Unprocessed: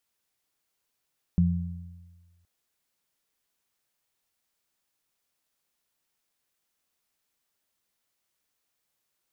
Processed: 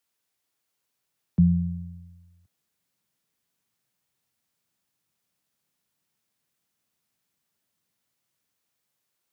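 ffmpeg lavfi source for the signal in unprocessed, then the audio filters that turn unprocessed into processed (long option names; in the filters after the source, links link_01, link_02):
-f lavfi -i "aevalsrc='0.075*pow(10,-3*t/1.54)*sin(2*PI*86.8*t)+0.133*pow(10,-3*t/0.99)*sin(2*PI*173.6*t)':duration=1.07:sample_rate=44100"
-filter_complex "[0:a]highpass=64,acrossover=split=120|180|380[link_01][link_02][link_03][link_04];[link_02]dynaudnorm=framelen=560:gausssize=5:maxgain=14.5dB[link_05];[link_01][link_05][link_03][link_04]amix=inputs=4:normalize=0"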